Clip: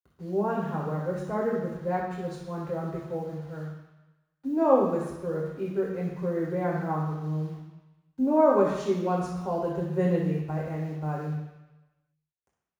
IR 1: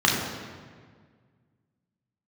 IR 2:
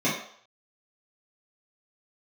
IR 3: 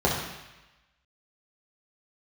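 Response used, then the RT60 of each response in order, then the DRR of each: 3; 1.7, 0.60, 1.0 seconds; −3.0, −11.0, −4.5 decibels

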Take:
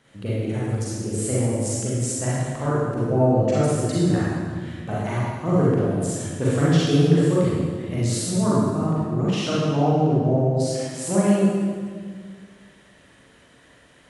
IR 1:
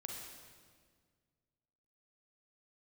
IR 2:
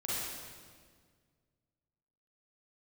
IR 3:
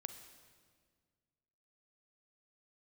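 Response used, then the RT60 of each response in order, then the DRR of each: 2; 1.8, 1.8, 1.8 seconds; 0.0, −8.5, 8.5 decibels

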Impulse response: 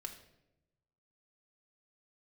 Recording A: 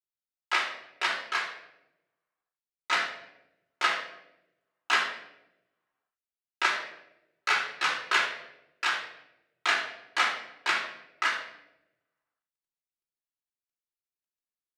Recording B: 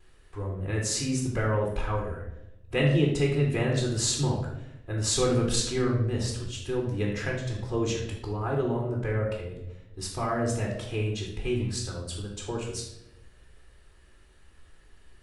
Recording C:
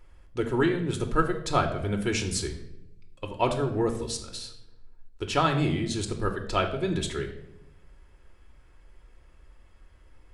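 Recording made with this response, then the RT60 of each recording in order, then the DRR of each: C; 0.90, 0.90, 0.90 seconds; −5.0, −14.0, 3.0 decibels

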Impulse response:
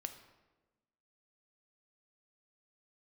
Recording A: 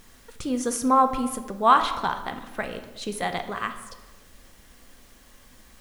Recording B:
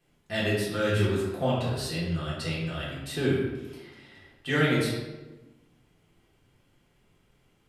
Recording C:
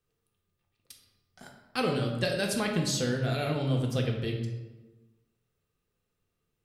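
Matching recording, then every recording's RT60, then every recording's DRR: A; 1.2, 1.2, 1.2 seconds; 7.0, −7.0, 0.5 decibels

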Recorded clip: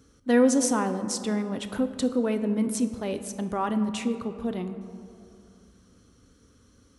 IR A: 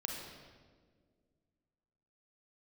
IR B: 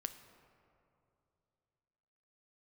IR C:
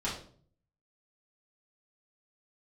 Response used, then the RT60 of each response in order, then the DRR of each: B; 1.7, 2.8, 0.50 seconds; 0.0, 8.5, −8.0 decibels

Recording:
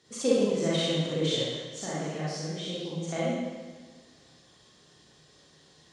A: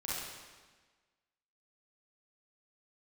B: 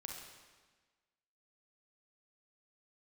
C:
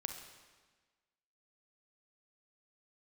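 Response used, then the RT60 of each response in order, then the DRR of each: A; 1.4, 1.4, 1.4 seconds; −8.5, 0.0, 5.0 decibels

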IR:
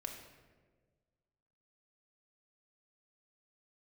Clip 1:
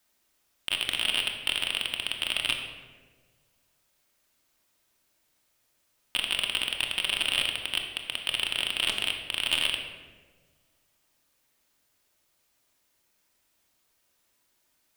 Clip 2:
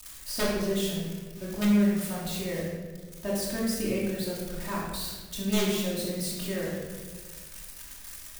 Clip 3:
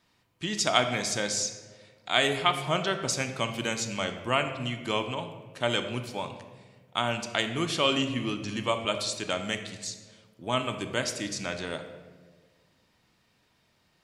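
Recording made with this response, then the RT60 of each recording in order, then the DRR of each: 1; 1.5, 1.5, 1.5 seconds; 2.0, −7.5, 6.0 decibels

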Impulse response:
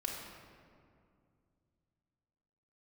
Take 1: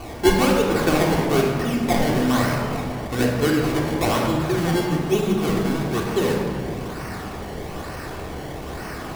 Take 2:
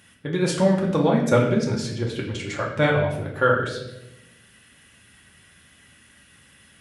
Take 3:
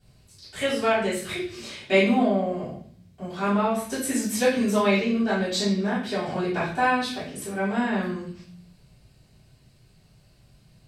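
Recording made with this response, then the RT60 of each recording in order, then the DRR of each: 1; 2.3, 0.95, 0.55 seconds; −3.0, −3.5, −13.0 decibels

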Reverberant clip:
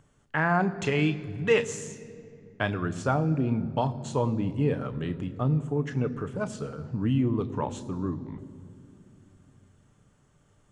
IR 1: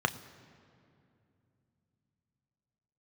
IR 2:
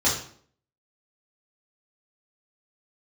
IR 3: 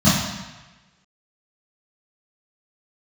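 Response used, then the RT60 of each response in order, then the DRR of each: 1; 2.6, 0.55, 1.2 seconds; 9.0, −8.5, −14.0 decibels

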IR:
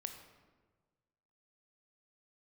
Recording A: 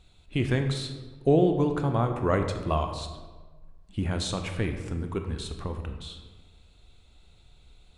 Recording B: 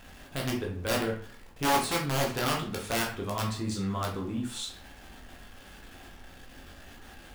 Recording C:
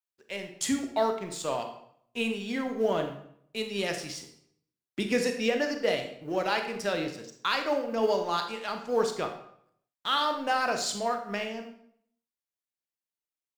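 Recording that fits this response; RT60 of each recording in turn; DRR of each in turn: A; 1.4, 0.50, 0.70 seconds; 5.5, −2.0, 5.5 decibels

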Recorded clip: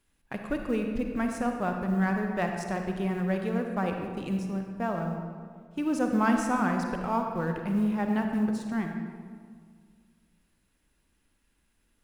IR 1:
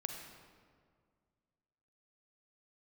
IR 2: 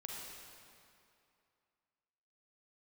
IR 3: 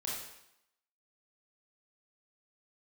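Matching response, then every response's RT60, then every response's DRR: 1; 2.0, 2.6, 0.80 seconds; 3.0, −2.5, −5.0 decibels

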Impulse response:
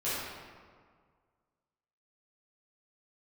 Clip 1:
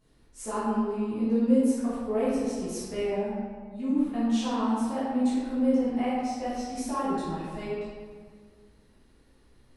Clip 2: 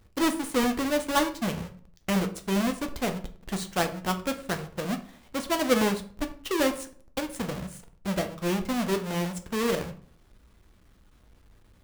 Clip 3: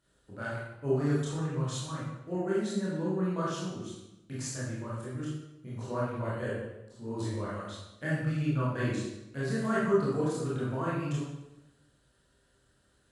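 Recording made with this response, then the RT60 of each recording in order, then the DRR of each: 1; 1.8, 0.45, 0.95 seconds; −12.5, 6.0, −8.5 decibels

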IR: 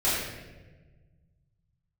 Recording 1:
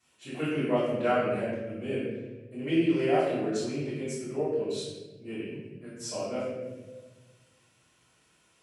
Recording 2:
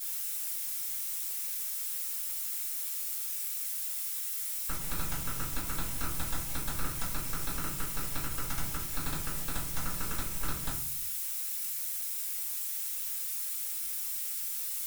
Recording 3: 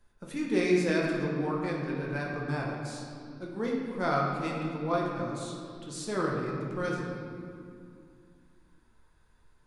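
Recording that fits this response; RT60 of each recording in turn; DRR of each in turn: 1; 1.3, 0.50, 2.4 seconds; −13.0, −10.0, −3.0 decibels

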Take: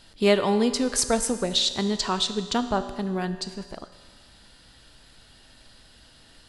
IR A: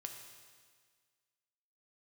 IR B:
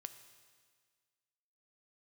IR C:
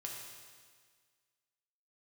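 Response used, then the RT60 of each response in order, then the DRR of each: B; 1.7, 1.7, 1.7 seconds; 3.0, 9.0, −2.0 decibels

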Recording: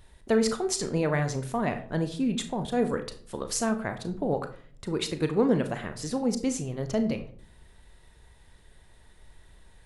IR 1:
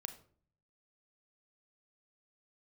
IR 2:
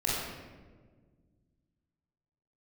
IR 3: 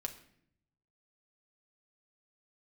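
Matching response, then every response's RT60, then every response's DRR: 1; 0.50, 1.5, 0.65 seconds; 8.0, −6.5, 3.5 decibels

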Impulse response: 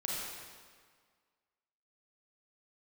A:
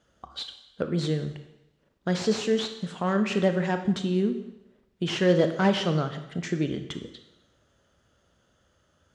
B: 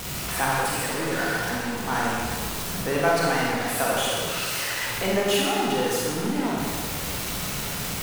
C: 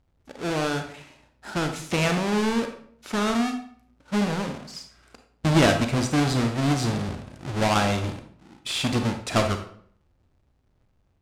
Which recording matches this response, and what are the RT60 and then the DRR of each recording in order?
B; 0.85, 1.7, 0.60 seconds; 7.0, −5.0, 5.5 decibels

